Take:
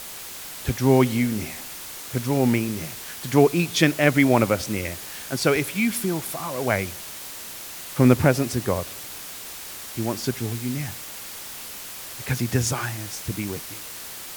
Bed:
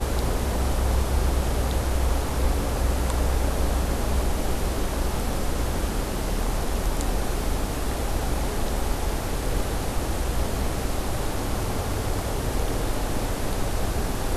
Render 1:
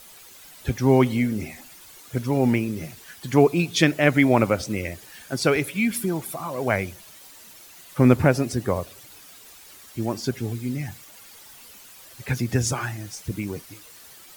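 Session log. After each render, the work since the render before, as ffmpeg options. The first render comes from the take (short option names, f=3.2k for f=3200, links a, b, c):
-af "afftdn=nr=12:nf=-37"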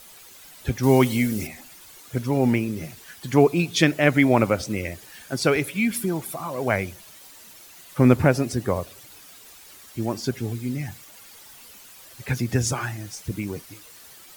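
-filter_complex "[0:a]asettb=1/sr,asplit=3[a][b][c];[a]atrim=end=0.834[d];[b]atrim=start=0.83:end=1.47,asetpts=PTS-STARTPTS,afade=t=in:d=0.004:c=qsin,afade=t=out:st=0.636:d=0.004:c=qsin,highshelf=f=3.7k:g=11[e];[c]atrim=start=1.466[f];[d][e]acrossfade=d=0.004:c1=hsin:c2=qsin[g];[g][f]acrossfade=d=0.004:c1=qsin:c2=hsin"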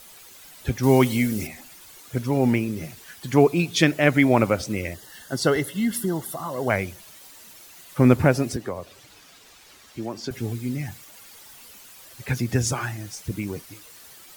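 -filter_complex "[0:a]asettb=1/sr,asplit=3[a][b][c];[a]atrim=end=4.944[d];[b]atrim=start=4.94:end=6.7,asetpts=PTS-STARTPTS,afade=t=in:d=0.004:c=qsin,afade=t=out:st=1.756:d=0.004:c=qsin,asuperstop=centerf=2400:order=12:qfactor=4.8[e];[c]atrim=start=6.696[f];[d][e]acrossfade=d=0.004:c1=hsin:c2=qsin[g];[g][f]acrossfade=d=0.004:c1=qsin:c2=hsin,asettb=1/sr,asplit=3[h][i][j];[h]atrim=end=8.564[k];[i]atrim=start=8.56:end=10.31,asetpts=PTS-STARTPTS,afade=t=in:d=0.004:c=qsin,afade=t=out:st=1.746:d=0.004:c=qsin,acrossover=split=220|6800[l][m][n];[l]acompressor=threshold=-41dB:ratio=4[o];[m]acompressor=threshold=-28dB:ratio=4[p];[n]acompressor=threshold=-58dB:ratio=4[q];[o][p][q]amix=inputs=3:normalize=0[r];[j]atrim=start=10.306[s];[k][r]acrossfade=d=0.004:c1=hsin:c2=qsin[t];[t][s]acrossfade=d=0.004:c1=qsin:c2=hsin"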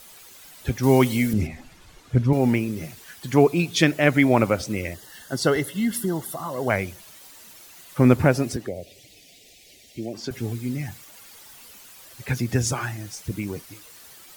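-filter_complex "[0:a]asettb=1/sr,asplit=3[a][b][c];[a]atrim=end=1.334[d];[b]atrim=start=1.33:end=2.33,asetpts=PTS-STARTPTS,afade=t=in:d=0.004:c=qsin,afade=t=out:st=0.996:d=0.004:c=qsin,aemphasis=mode=reproduction:type=bsi[e];[c]atrim=start=2.326[f];[d][e]acrossfade=d=0.004:c1=hsin:c2=qsin[g];[g][f]acrossfade=d=0.004:c1=qsin:c2=hsin,asplit=3[h][i][j];[h]afade=t=out:st=8.66:d=0.02[k];[i]asuperstop=centerf=1200:order=8:qfactor=0.92,afade=t=in:st=8.66:d=0.02,afade=t=out:st=10.13:d=0.02[l];[j]afade=t=in:st=10.13:d=0.02[m];[k][l][m]amix=inputs=3:normalize=0"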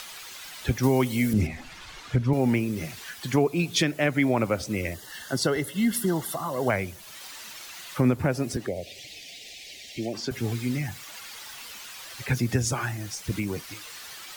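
-filter_complex "[0:a]acrossover=split=140|840|6200[a][b][c][d];[c]acompressor=mode=upward:threshold=-33dB:ratio=2.5[e];[a][b][e][d]amix=inputs=4:normalize=0,alimiter=limit=-12dB:level=0:latency=1:release=357"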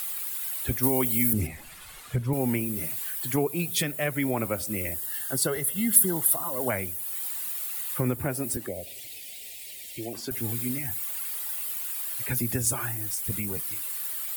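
-af "flanger=delay=1.5:depth=2:regen=-66:speed=0.52:shape=sinusoidal,aexciter=amount=9.1:drive=3.9:freq=8.3k"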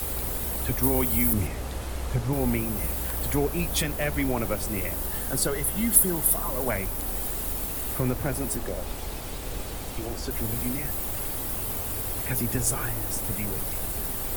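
-filter_complex "[1:a]volume=-9dB[a];[0:a][a]amix=inputs=2:normalize=0"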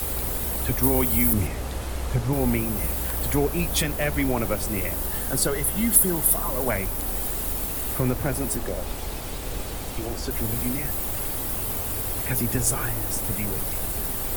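-af "volume=2.5dB,alimiter=limit=-3dB:level=0:latency=1"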